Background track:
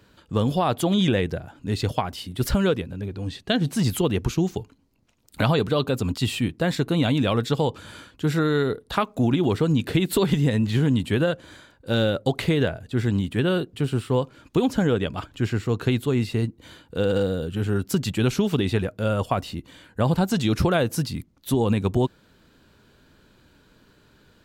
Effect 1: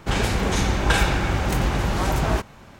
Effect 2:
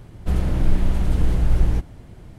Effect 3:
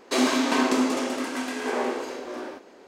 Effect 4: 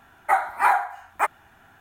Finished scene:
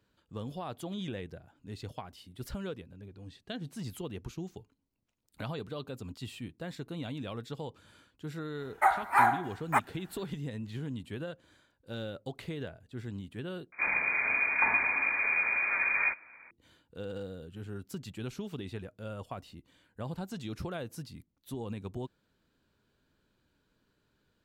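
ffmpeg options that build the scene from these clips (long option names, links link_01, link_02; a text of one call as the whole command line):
ffmpeg -i bed.wav -i cue0.wav -i cue1.wav -i cue2.wav -i cue3.wav -filter_complex "[0:a]volume=-17.5dB[link_01];[1:a]lowpass=frequency=2100:width_type=q:width=0.5098,lowpass=frequency=2100:width_type=q:width=0.6013,lowpass=frequency=2100:width_type=q:width=0.9,lowpass=frequency=2100:width_type=q:width=2.563,afreqshift=-2500[link_02];[link_01]asplit=2[link_03][link_04];[link_03]atrim=end=13.724[link_05];[link_02]atrim=end=2.79,asetpts=PTS-STARTPTS,volume=-8dB[link_06];[link_04]atrim=start=16.506[link_07];[4:a]atrim=end=1.8,asetpts=PTS-STARTPTS,volume=-4.5dB,afade=type=in:duration=0.1,afade=type=out:start_time=1.7:duration=0.1,adelay=8530[link_08];[link_05][link_06]acrossfade=duration=0.004:curve1=hsin:curve2=hsin[link_09];[link_09][link_07]acrossfade=duration=0.004:curve1=hsin:curve2=hsin[link_10];[link_10][link_08]amix=inputs=2:normalize=0" out.wav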